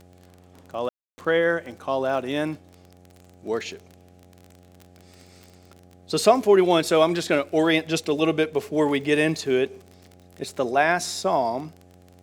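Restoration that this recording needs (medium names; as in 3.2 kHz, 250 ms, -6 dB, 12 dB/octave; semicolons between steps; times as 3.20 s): de-click; de-hum 90 Hz, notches 9; room tone fill 0.89–1.18 s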